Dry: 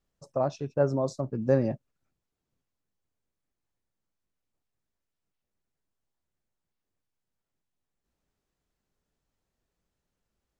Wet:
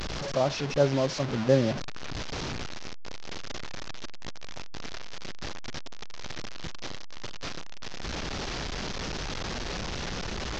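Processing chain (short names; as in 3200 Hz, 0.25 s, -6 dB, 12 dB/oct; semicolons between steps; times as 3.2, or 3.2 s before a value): delta modulation 32 kbps, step -28.5 dBFS; gain +1.5 dB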